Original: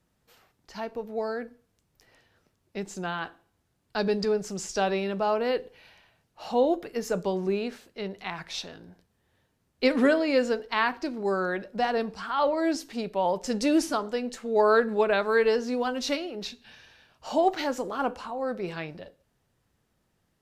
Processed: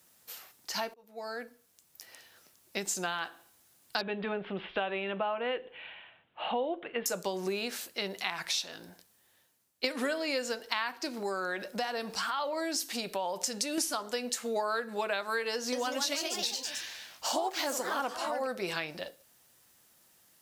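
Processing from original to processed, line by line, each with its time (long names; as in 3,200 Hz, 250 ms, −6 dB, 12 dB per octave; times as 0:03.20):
0:00.94–0:02.87: fade in equal-power
0:04.01–0:07.06: Butterworth low-pass 3,400 Hz 72 dB per octave
0:08.74–0:09.84: fade out, to −16 dB
0:11.19–0:13.78: downward compressor 2 to 1, threshold −33 dBFS
0:15.53–0:18.61: delay with pitch and tempo change per echo 194 ms, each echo +2 semitones, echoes 3, each echo −6 dB
whole clip: RIAA equalisation recording; notch filter 430 Hz, Q 12; downward compressor 6 to 1, threshold −36 dBFS; level +6 dB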